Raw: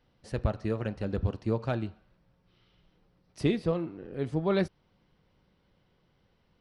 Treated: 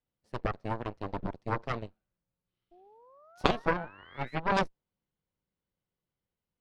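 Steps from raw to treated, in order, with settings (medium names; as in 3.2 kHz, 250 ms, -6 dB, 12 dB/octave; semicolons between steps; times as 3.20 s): dynamic bell 550 Hz, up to +7 dB, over -42 dBFS, Q 0.89; painted sound rise, 2.71–4.40 s, 340–2200 Hz -38 dBFS; Chebyshev shaper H 2 -8 dB, 3 -9 dB, 4 -9 dB, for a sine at -9.5 dBFS; trim +2 dB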